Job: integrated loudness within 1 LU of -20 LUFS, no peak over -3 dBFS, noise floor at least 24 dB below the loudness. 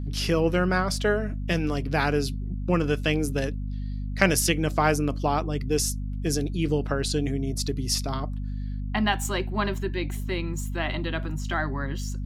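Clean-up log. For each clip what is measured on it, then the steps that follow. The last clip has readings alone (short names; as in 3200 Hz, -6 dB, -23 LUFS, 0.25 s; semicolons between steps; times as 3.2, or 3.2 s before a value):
hum 50 Hz; harmonics up to 250 Hz; hum level -28 dBFS; loudness -26.5 LUFS; peak -4.5 dBFS; loudness target -20.0 LUFS
-> de-hum 50 Hz, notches 5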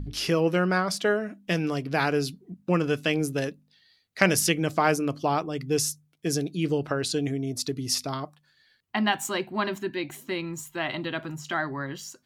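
hum none; loudness -27.0 LUFS; peak -5.0 dBFS; loudness target -20.0 LUFS
-> gain +7 dB; limiter -3 dBFS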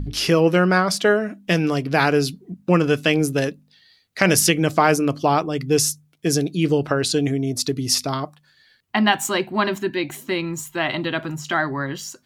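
loudness -20.5 LUFS; peak -3.0 dBFS; noise floor -60 dBFS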